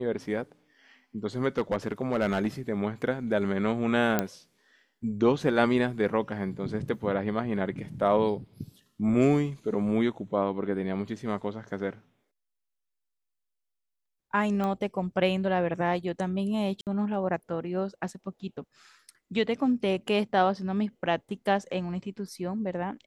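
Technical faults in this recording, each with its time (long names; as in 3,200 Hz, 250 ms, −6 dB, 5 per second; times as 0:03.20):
0:01.49–0:02.47: clipping −20.5 dBFS
0:04.19: click −10 dBFS
0:14.64: click −19 dBFS
0:16.81–0:16.87: drop-out 58 ms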